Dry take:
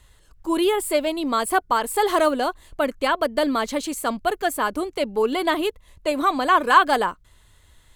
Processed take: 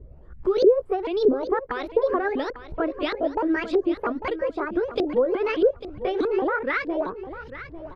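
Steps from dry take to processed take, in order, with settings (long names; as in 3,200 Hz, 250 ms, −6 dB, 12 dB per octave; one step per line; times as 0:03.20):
pitch shifter swept by a sawtooth +8 semitones, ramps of 214 ms
downward compressor 2.5 to 1, threshold −35 dBFS, peak gain reduction 16.5 dB
auto-filter low-pass saw up 1.6 Hz 430–4,100 Hz
low shelf with overshoot 590 Hz +8.5 dB, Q 1.5
on a send: repeating echo 848 ms, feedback 18%, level −13 dB
on the sum: level +1.5 dB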